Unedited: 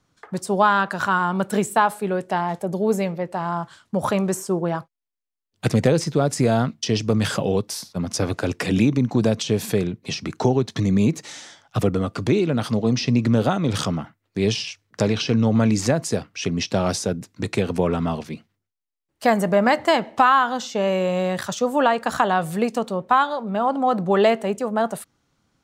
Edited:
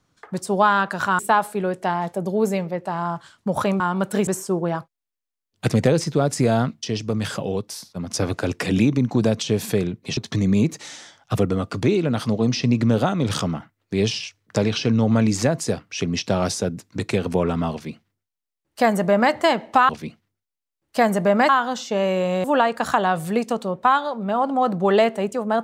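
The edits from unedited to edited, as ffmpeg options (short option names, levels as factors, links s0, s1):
-filter_complex "[0:a]asplit=10[s0][s1][s2][s3][s4][s5][s6][s7][s8][s9];[s0]atrim=end=1.192[s10];[s1]atrim=start=1.658:end=4.272[s11];[s2]atrim=start=1.188:end=1.662[s12];[s3]atrim=start=4.268:end=6.822[s13];[s4]atrim=start=6.818:end=8.102,asetpts=PTS-STARTPTS,volume=0.631[s14];[s5]atrim=start=8.098:end=10.172[s15];[s6]atrim=start=10.608:end=20.332[s16];[s7]atrim=start=18.158:end=19.762[s17];[s8]atrim=start=20.328:end=21.282[s18];[s9]atrim=start=21.698[s19];[s10][s11]acrossfade=d=0.004:c1=hsin:c2=hsin[s20];[s20][s12]acrossfade=d=0.004:c1=hsin:c2=hsin[s21];[s21][s13]acrossfade=d=0.004:c1=hsin:c2=hsin[s22];[s22][s14]acrossfade=d=0.004:c1=hsin:c2=hsin[s23];[s23][s15]acrossfade=d=0.004:c1=hsin:c2=hsin[s24];[s24][s16]acrossfade=d=0.004:c1=hsin:c2=hsin[s25];[s25][s17]acrossfade=d=0.004:c1=hsin:c2=hsin[s26];[s26][s18]acrossfade=d=0.004:c1=hsin:c2=hsin[s27];[s27][s19]acrossfade=d=0.004:c1=hsin:c2=hsin"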